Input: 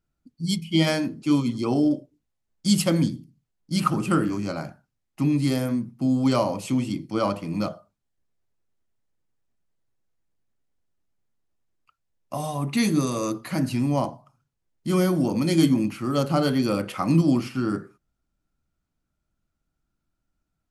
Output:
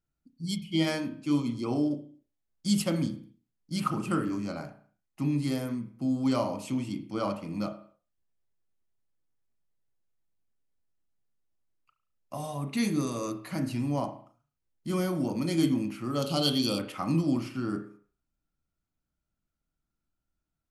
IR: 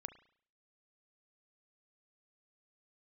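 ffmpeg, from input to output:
-filter_complex "[0:a]asettb=1/sr,asplit=3[a][b][c];[a]atrim=end=16.224[d];[b]atrim=start=16.22:end=16.79,asetpts=PTS-STARTPTS,afade=t=in:d=0.004:c=qsin,afade=t=out:st=0.566:d=0.004:c=qsin,highshelf=f=2.5k:t=q:w=3:g=9[e];[c]atrim=start=16.786[f];[d][e]acrossfade=d=0.004:c1=hsin:c2=qsin[g];[g][f]acrossfade=d=0.004:c1=qsin:c2=hsin[h];[1:a]atrim=start_sample=2205,afade=t=out:st=0.34:d=0.01,atrim=end_sample=15435[i];[h][i]afir=irnorm=-1:irlink=0,volume=-2dB"

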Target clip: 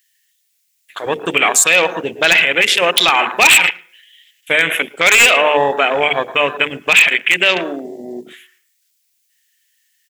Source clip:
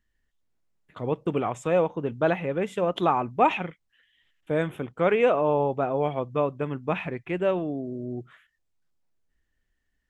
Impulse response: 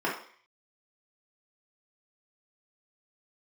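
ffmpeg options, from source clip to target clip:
-filter_complex "[0:a]aderivative,bandreject=f=50:t=h:w=6,bandreject=f=100:t=h:w=6,bandreject=f=150:t=h:w=6,bandreject=f=200:t=h:w=6,bandreject=f=250:t=h:w=6,bandreject=f=300:t=h:w=6,bandreject=f=350:t=h:w=6,bandreject=f=400:t=h:w=6,bandreject=f=450:t=h:w=6,bandreject=f=500:t=h:w=6,asplit=2[a][b];[1:a]atrim=start_sample=2205,adelay=106[c];[b][c]afir=irnorm=-1:irlink=0,volume=-24.5dB[d];[a][d]amix=inputs=2:normalize=0,afwtdn=0.00224,highshelf=f=1.6k:t=q:w=1.5:g=10,aeval=exprs='0.0447*(abs(mod(val(0)/0.0447+3,4)-2)-1)':c=same,asplit=2[e][f];[f]adelay=110.8,volume=-29dB,highshelf=f=4k:g=-2.49[g];[e][g]amix=inputs=2:normalize=0,alimiter=level_in=34dB:limit=-1dB:release=50:level=0:latency=1,volume=-1dB"

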